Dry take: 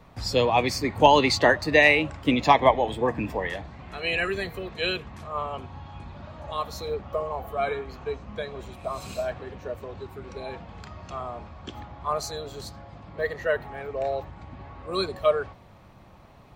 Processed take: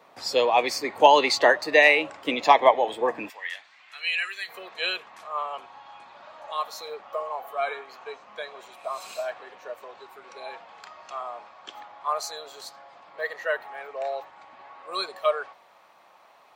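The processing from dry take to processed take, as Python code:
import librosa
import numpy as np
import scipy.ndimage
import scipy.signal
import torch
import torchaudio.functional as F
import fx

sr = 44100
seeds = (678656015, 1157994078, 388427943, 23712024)

y = fx.cheby1_highpass(x, sr, hz=fx.steps((0.0, 490.0), (3.28, 2100.0), (4.48, 800.0)), order=2)
y = F.gain(torch.from_numpy(y), 1.5).numpy()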